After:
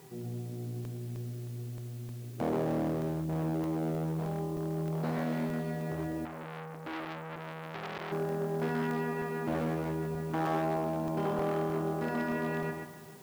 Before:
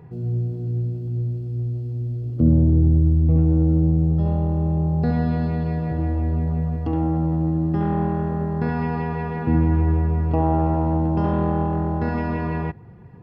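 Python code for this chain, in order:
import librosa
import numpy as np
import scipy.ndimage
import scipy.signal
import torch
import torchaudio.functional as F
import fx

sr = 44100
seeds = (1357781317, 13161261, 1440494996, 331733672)

p1 = fx.notch(x, sr, hz=460.0, q=15.0)
p2 = fx.comb_fb(p1, sr, f0_hz=390.0, decay_s=0.43, harmonics='all', damping=0.0, mix_pct=80)
p3 = fx.rider(p2, sr, range_db=5, speed_s=2.0)
p4 = p2 + (p3 * 10.0 ** (-0.5 / 20.0))
p5 = fx.quant_dither(p4, sr, seeds[0], bits=10, dither='triangular')
p6 = p5 + fx.echo_feedback(p5, sr, ms=132, feedback_pct=24, wet_db=-5, dry=0)
p7 = 10.0 ** (-22.0 / 20.0) * (np.abs((p6 / 10.0 ** (-22.0 / 20.0) + 3.0) % 4.0 - 2.0) - 1.0)
p8 = scipy.signal.sosfilt(scipy.signal.butter(2, 230.0, 'highpass', fs=sr, output='sos'), p7)
p9 = p8 + 10.0 ** (-19.0 / 20.0) * np.pad(p8, (int(434 * sr / 1000.0), 0))[:len(p8)]
p10 = fx.buffer_crackle(p9, sr, first_s=0.85, period_s=0.31, block=64, kind='zero')
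y = fx.transformer_sat(p10, sr, knee_hz=2300.0, at=(6.25, 8.12))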